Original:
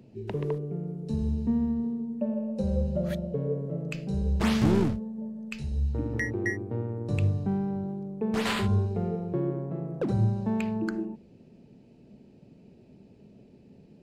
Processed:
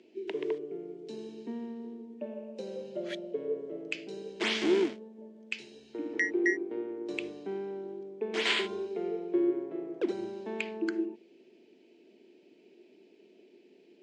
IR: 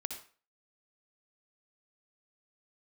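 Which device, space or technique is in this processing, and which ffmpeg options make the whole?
phone speaker on a table: -af "highpass=f=340:w=0.5412,highpass=f=340:w=1.3066,equalizer=f=350:t=q:w=4:g=8,equalizer=f=540:t=q:w=4:g=-8,equalizer=f=810:t=q:w=4:g=-7,equalizer=f=1.2k:t=q:w=4:g=-8,equalizer=f=2.2k:t=q:w=4:g=6,equalizer=f=3.2k:t=q:w=4:g=7,lowpass=f=7.5k:w=0.5412,lowpass=f=7.5k:w=1.3066"

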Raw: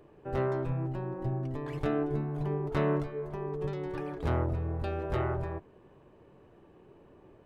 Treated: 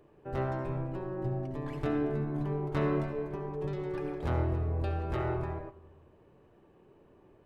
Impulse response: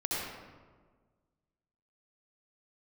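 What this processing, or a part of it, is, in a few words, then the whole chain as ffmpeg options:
keyed gated reverb: -filter_complex "[0:a]asplit=3[a][b][c];[1:a]atrim=start_sample=2205[d];[b][d]afir=irnorm=-1:irlink=0[e];[c]apad=whole_len=328802[f];[e][f]sidechaingate=range=-11dB:threshold=-49dB:ratio=16:detection=peak,volume=-8.5dB[g];[a][g]amix=inputs=2:normalize=0,volume=-4.5dB"

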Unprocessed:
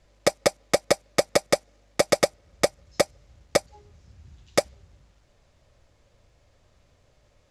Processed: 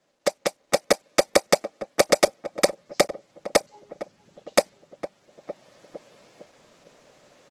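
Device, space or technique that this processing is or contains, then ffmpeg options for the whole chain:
video call: -filter_complex "[0:a]highpass=f=170:w=0.5412,highpass=f=170:w=1.3066,equalizer=f=68:t=o:w=1.6:g=-4.5,asplit=2[a][b];[b]adelay=457,lowpass=f=930:p=1,volume=-13dB,asplit=2[c][d];[d]adelay=457,lowpass=f=930:p=1,volume=0.49,asplit=2[e][f];[f]adelay=457,lowpass=f=930:p=1,volume=0.49,asplit=2[g][h];[h]adelay=457,lowpass=f=930:p=1,volume=0.49,asplit=2[i][j];[j]adelay=457,lowpass=f=930:p=1,volume=0.49[k];[a][c][e][g][i][k]amix=inputs=6:normalize=0,dynaudnorm=f=520:g=3:m=14.5dB,volume=-2dB" -ar 48000 -c:a libopus -b:a 16k

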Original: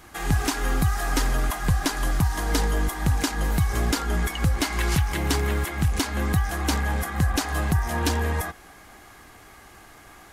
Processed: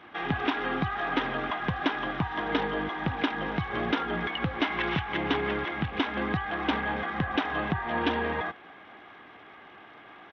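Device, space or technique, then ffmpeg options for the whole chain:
Bluetooth headset: -af "highpass=200,aresample=8000,aresample=44100" -ar 32000 -c:a sbc -b:a 64k

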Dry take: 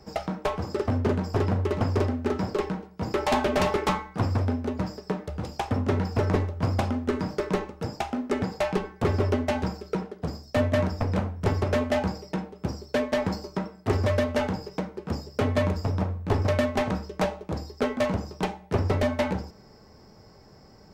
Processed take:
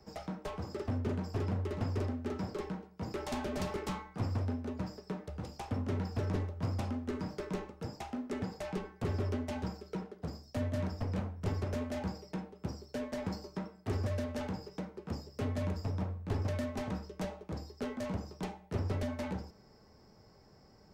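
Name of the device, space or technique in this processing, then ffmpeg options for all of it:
one-band saturation: -filter_complex "[0:a]acrossover=split=320|4400[a][b][c];[b]asoftclip=type=tanh:threshold=-30dB[d];[a][d][c]amix=inputs=3:normalize=0,volume=-8.5dB"

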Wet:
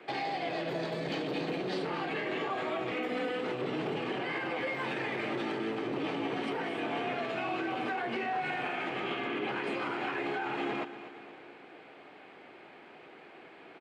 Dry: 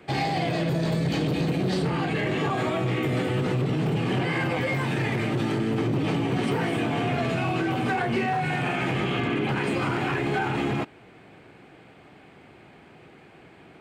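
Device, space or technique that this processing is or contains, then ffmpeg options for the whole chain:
DJ mixer with the lows and highs turned down: -filter_complex "[0:a]asettb=1/sr,asplit=3[a][b][c];[a]atrim=end=2.914[d];[b]atrim=start=2.91:end=3.44,asetpts=PTS-STARTPTS,afade=t=in:d=0.004:c=qsin,afade=t=out:st=0.526:d=0.004:c=qsin,aecho=1:1:4:0.96,atrim=end_sample=23373[e];[c]atrim=start=3.436[f];[d][e]acrossfade=d=0.004:c1=hsin:c2=qsin[g];[g][f]acrossfade=d=0.004:c1=qsin:c2=hsin,acrossover=split=270 5000:gain=0.0891 1 0.2[h][i][j];[h][i][j]amix=inputs=3:normalize=0,alimiter=level_in=1.5dB:limit=-24dB:level=0:latency=1:release=256,volume=-1.5dB,aecho=1:1:236|472|708|944|1180:0.224|0.119|0.0629|0.0333|0.0177"

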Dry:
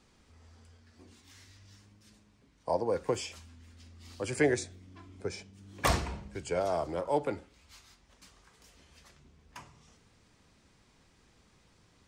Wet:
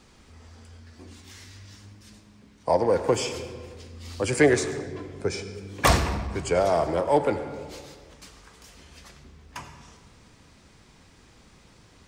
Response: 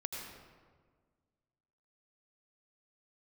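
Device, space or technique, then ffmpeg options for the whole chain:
saturated reverb return: -filter_complex "[0:a]asplit=2[a][b];[1:a]atrim=start_sample=2205[c];[b][c]afir=irnorm=-1:irlink=0,asoftclip=type=tanh:threshold=-29dB,volume=-3.5dB[d];[a][d]amix=inputs=2:normalize=0,volume=6dB"

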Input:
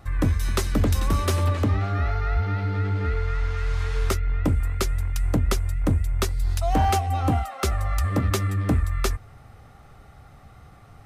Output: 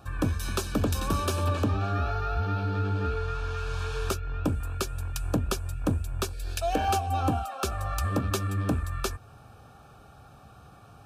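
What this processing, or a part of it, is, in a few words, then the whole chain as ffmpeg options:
PA system with an anti-feedback notch: -filter_complex "[0:a]highpass=f=120:p=1,asuperstop=centerf=2000:order=12:qfactor=4.8,alimiter=limit=-15.5dB:level=0:latency=1:release=257,asettb=1/sr,asplit=3[a][b][c];[a]atrim=end=6.334[d];[b]atrim=start=6.33:end=6.88,asetpts=PTS-STARTPTS,afade=t=in:d=0.004:c=qsin,afade=t=out:st=0.546:d=0.004:c=qsin,equalizer=f=125:t=o:w=1:g=-11,equalizer=f=500:t=o:w=1:g=7,equalizer=f=1k:t=o:w=1:g=-10,equalizer=f=2k:t=o:w=1:g=9[e];[c]atrim=start=6.876[f];[d][e]acrossfade=d=0.004:c1=hsin:c2=qsin[g];[g][f]acrossfade=d=0.004:c1=qsin:c2=hsin"

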